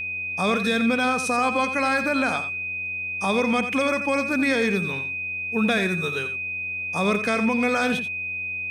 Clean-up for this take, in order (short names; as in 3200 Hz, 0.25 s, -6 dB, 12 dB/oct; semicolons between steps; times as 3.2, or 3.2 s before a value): de-hum 90.9 Hz, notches 10; notch 2500 Hz, Q 30; inverse comb 87 ms -10.5 dB